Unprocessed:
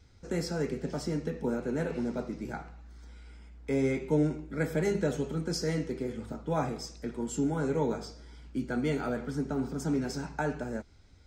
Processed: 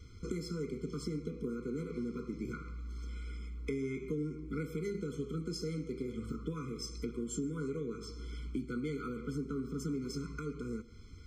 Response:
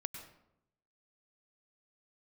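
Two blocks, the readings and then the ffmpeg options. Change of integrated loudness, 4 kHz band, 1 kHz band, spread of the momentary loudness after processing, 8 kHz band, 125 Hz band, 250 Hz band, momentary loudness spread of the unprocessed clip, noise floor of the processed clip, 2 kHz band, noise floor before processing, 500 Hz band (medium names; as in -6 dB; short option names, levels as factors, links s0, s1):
-7.0 dB, -5.5 dB, -12.5 dB, 6 LU, -5.0 dB, -6.0 dB, -6.0 dB, 12 LU, -49 dBFS, -10.0 dB, -56 dBFS, -8.0 dB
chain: -filter_complex "[0:a]acompressor=threshold=0.00794:ratio=6,asplit=2[s0][s1];[1:a]atrim=start_sample=2205[s2];[s1][s2]afir=irnorm=-1:irlink=0,volume=0.282[s3];[s0][s3]amix=inputs=2:normalize=0,afftfilt=real='re*eq(mod(floor(b*sr/1024/500),2),0)':imag='im*eq(mod(floor(b*sr/1024/500),2),0)':win_size=1024:overlap=0.75,volume=1.78"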